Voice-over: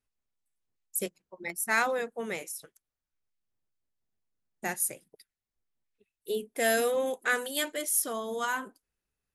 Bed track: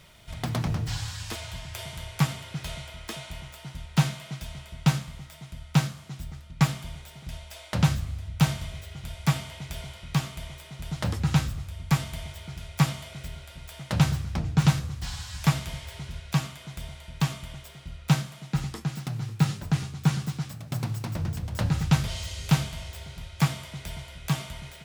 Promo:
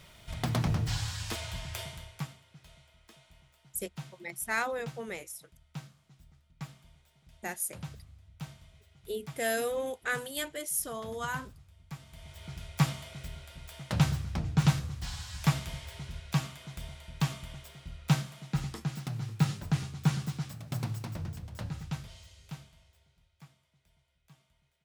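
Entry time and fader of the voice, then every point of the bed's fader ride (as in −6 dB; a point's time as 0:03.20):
2.80 s, −4.5 dB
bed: 0:01.78 −1 dB
0:02.43 −20.5 dB
0:11.99 −20.5 dB
0:12.46 −4 dB
0:20.86 −4 dB
0:23.61 −33 dB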